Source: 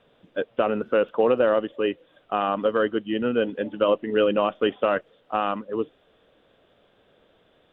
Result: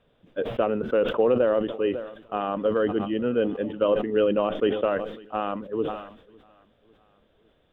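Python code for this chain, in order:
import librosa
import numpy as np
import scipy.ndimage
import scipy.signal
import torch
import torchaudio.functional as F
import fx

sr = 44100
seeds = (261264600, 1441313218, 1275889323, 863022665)

p1 = fx.low_shelf(x, sr, hz=130.0, db=12.0)
p2 = p1 + fx.echo_feedback(p1, sr, ms=552, feedback_pct=52, wet_db=-23, dry=0)
p3 = fx.dynamic_eq(p2, sr, hz=440.0, q=1.0, threshold_db=-31.0, ratio=4.0, max_db=5)
p4 = fx.sustainer(p3, sr, db_per_s=77.0)
y = p4 * librosa.db_to_amplitude(-6.5)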